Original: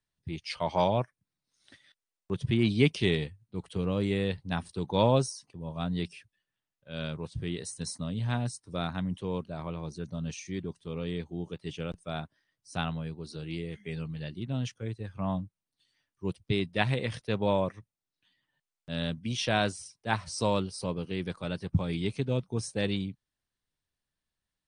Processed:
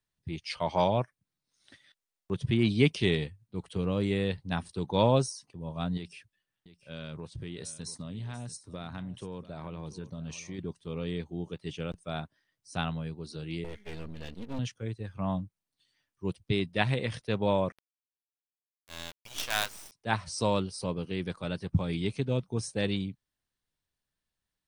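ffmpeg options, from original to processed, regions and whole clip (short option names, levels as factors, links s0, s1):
-filter_complex "[0:a]asettb=1/sr,asplit=3[s0][s1][s2];[s0]atrim=end=5.974[s3];[s1]atrim=start=5.97:end=10.59,asetpts=PTS-STARTPTS,afade=t=in:d=0.004:c=qsin,afade=t=out:st=4.616:d=0.004:c=qsin,acompressor=threshold=0.0178:ratio=6:attack=3.2:release=140:knee=1:detection=peak,aecho=1:1:687:0.168,atrim=end_sample=203742[s4];[s2]atrim=start=10.586[s5];[s3][s4]acrossfade=d=0.004:c1=hsin:c2=qsin[s6];[s6][s5]acrossfade=d=0.004:c1=qsin:c2=hsin,asettb=1/sr,asplit=3[s7][s8][s9];[s7]atrim=end=13.644[s10];[s8]atrim=start=13.64:end=14.59,asetpts=PTS-STARTPTS,afade=t=in:d=0.004:c=qsin,afade=t=out:st=0.946:d=0.004:c=qsin,lowshelf=f=120:t=q:w=1.5:g=7,aecho=1:1:4.2:0.91,atrim=end_sample=41895,aeval=exprs='max(val(0),0)':c=same[s11];[s9]atrim=start=14.586[s12];[s10][s11]acrossfade=d=0.004:c1=hsin:c2=qsin[s13];[s13][s12]acrossfade=d=0.004:c1=qsin:c2=hsin,asettb=1/sr,asplit=3[s14][s15][s16];[s14]atrim=end=17.724[s17];[s15]atrim=start=17.72:end=19.92,asetpts=PTS-STARTPTS,afade=t=in:d=0.004:c=qsin,afade=t=out:st=2.196:d=0.004:c=qsin,highpass=f=730:w=0.5412,highpass=f=730:w=1.3066,acrusher=bits=5:dc=4:mix=0:aa=0.000001[s18];[s16]atrim=start=19.916[s19];[s17][s18]acrossfade=d=0.004:c1=hsin:c2=qsin[s20];[s20][s19]acrossfade=d=0.004:c1=qsin:c2=hsin"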